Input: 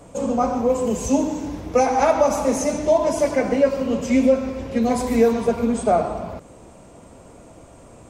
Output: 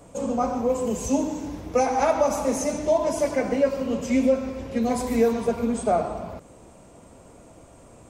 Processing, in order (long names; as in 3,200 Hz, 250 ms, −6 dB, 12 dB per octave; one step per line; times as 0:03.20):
high-shelf EQ 9,700 Hz +4.5 dB
level −4 dB